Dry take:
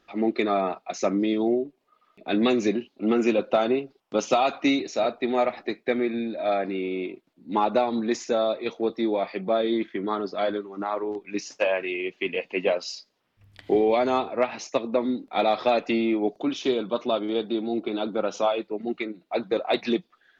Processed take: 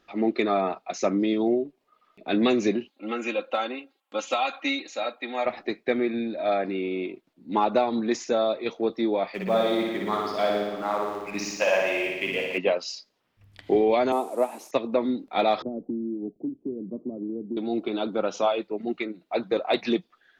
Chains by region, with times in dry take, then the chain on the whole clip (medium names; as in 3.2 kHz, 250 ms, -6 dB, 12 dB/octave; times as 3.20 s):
2.90–5.46 s: high-pass 1.2 kHz 6 dB/octave + peaking EQ 5.4 kHz -11.5 dB 0.38 oct + comb 3.7 ms, depth 72%
9.34–12.58 s: companding laws mixed up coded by mu + peaking EQ 340 Hz -6.5 dB 0.96 oct + flutter echo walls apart 10 m, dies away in 1.2 s
14.12–14.71 s: one-bit delta coder 64 kbps, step -37 dBFS + high-pass 230 Hz 24 dB/octave + high-order bell 2.9 kHz -12.5 dB 2.5 oct
15.62–17.57 s: four-pole ladder low-pass 370 Hz, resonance 25% + three bands compressed up and down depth 100%
whole clip: none